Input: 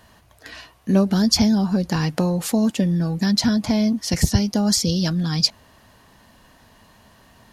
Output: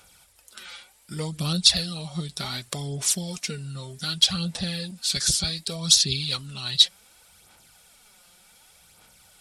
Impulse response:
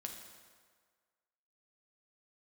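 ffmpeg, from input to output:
-af "crystalizer=i=8.5:c=0,aphaser=in_gain=1:out_gain=1:delay=4.6:decay=0.47:speed=0.83:type=sinusoidal,asetrate=35280,aresample=44100,volume=0.178"

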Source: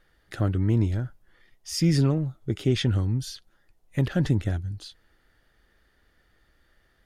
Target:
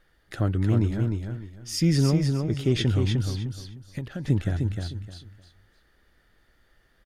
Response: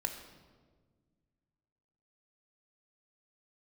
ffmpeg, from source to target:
-filter_complex "[0:a]asplit=3[s0][s1][s2];[s0]afade=t=out:st=3.21:d=0.02[s3];[s1]acompressor=threshold=0.0316:ratio=12,afade=t=in:st=3.21:d=0.02,afade=t=out:st=4.27:d=0.02[s4];[s2]afade=t=in:st=4.27:d=0.02[s5];[s3][s4][s5]amix=inputs=3:normalize=0,aecho=1:1:305|610|915:0.562|0.141|0.0351"

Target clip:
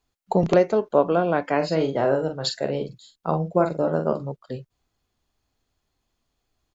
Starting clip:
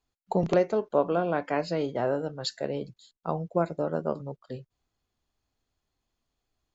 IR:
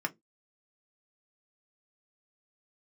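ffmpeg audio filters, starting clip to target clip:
-filter_complex "[0:a]asplit=3[s0][s1][s2];[s0]afade=t=out:st=1.6:d=0.02[s3];[s1]asplit=2[s4][s5];[s5]adelay=44,volume=0.447[s6];[s4][s6]amix=inputs=2:normalize=0,afade=t=in:st=1.6:d=0.02,afade=t=out:st=4.3:d=0.02[s7];[s2]afade=t=in:st=4.3:d=0.02[s8];[s3][s7][s8]amix=inputs=3:normalize=0,volume=1.88"

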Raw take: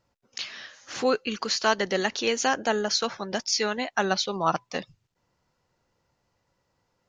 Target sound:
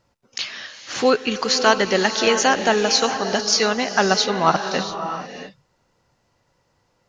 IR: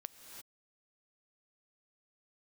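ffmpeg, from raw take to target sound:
-filter_complex "[0:a]asplit=2[s0][s1];[1:a]atrim=start_sample=2205,asetrate=22491,aresample=44100[s2];[s1][s2]afir=irnorm=-1:irlink=0,volume=1.88[s3];[s0][s3]amix=inputs=2:normalize=0,volume=0.891"

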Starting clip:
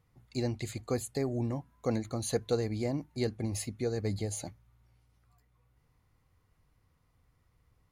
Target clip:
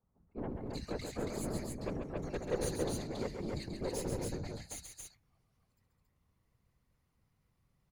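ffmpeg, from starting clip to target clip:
-filter_complex "[0:a]acrossover=split=160|1400[s0][s1][s2];[s0]adelay=30[s3];[s2]adelay=390[s4];[s3][s1][s4]amix=inputs=3:normalize=0,aeval=exprs='0.133*(cos(1*acos(clip(val(0)/0.133,-1,1)))-cos(1*PI/2))+0.015*(cos(8*acos(clip(val(0)/0.133,-1,1)))-cos(8*PI/2))':c=same,afftfilt=real='hypot(re,im)*cos(2*PI*random(0))':imag='hypot(re,im)*sin(2*PI*random(1))':win_size=512:overlap=0.75,asplit=2[s5][s6];[s6]aecho=0:1:134.1|277:0.501|0.708[s7];[s5][s7]amix=inputs=2:normalize=0,volume=0.891"

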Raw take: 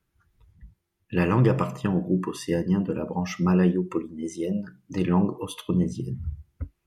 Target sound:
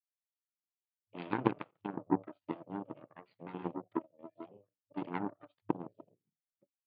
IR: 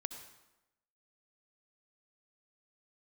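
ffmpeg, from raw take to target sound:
-filter_complex "[0:a]asplit=3[s0][s1][s2];[s0]bandpass=f=300:t=q:w=8,volume=1[s3];[s1]bandpass=f=870:t=q:w=8,volume=0.501[s4];[s2]bandpass=f=2240:t=q:w=8,volume=0.355[s5];[s3][s4][s5]amix=inputs=3:normalize=0,aeval=exprs='0.0891*(cos(1*acos(clip(val(0)/0.0891,-1,1)))-cos(1*PI/2))+0.0355*(cos(3*acos(clip(val(0)/0.0891,-1,1)))-cos(3*PI/2))+0.00355*(cos(5*acos(clip(val(0)/0.0891,-1,1)))-cos(5*PI/2))+0.000501*(cos(6*acos(clip(val(0)/0.0891,-1,1)))-cos(6*PI/2))+0.002*(cos(8*acos(clip(val(0)/0.0891,-1,1)))-cos(8*PI/2))':c=same,afftfilt=real='re*between(b*sr/4096,100,4800)':imag='im*between(b*sr/4096,100,4800)':win_size=4096:overlap=0.75,volume=2.82"

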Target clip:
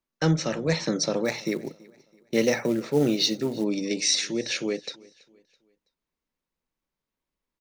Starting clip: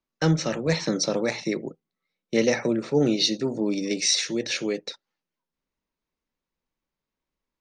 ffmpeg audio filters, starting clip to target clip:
-filter_complex "[0:a]aecho=1:1:329|658|987:0.0631|0.0252|0.0101,asplit=3[s0][s1][s2];[s0]afade=t=out:st=1.24:d=0.02[s3];[s1]acrusher=bits=6:mode=log:mix=0:aa=0.000001,afade=t=in:st=1.24:d=0.02,afade=t=out:st=3.63:d=0.02[s4];[s2]afade=t=in:st=3.63:d=0.02[s5];[s3][s4][s5]amix=inputs=3:normalize=0,volume=0.891"

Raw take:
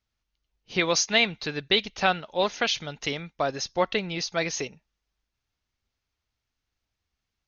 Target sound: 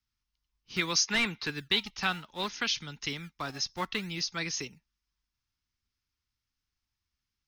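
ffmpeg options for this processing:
-filter_complex "[0:a]asettb=1/sr,asplit=3[s0][s1][s2];[s0]atrim=end=1.064[s3];[s1]atrim=start=1.06:end=1.5,asetpts=PTS-STARTPTS,afade=t=in:d=0.004:c=qsin,afade=t=out:st=0.436:d=0.004:c=qsin,asplit=2[s4][s5];[s5]highpass=f=720:p=1,volume=7.94,asoftclip=type=tanh:threshold=0.398[s6];[s4][s6]amix=inputs=2:normalize=0,lowpass=f=1200:p=1,volume=0.501[s7];[s2]atrim=start=1.496[s8];[s3][s7]acrossfade=d=0.004:c1=hsin:c2=qsin[s9];[s9][s8]acrossfade=d=0.004:c1=qsin:c2=hsin,acrossover=split=300|350|2900[s10][s11][s12][s13];[s10]acrusher=samples=25:mix=1:aa=0.000001:lfo=1:lforange=40:lforate=0.62[s14];[s12]highpass=f=930:w=0.5412,highpass=f=930:w=1.3066[s15];[s13]equalizer=f=5200:w=5.9:g=6.5[s16];[s14][s11][s15][s16]amix=inputs=4:normalize=0,volume=0.631"

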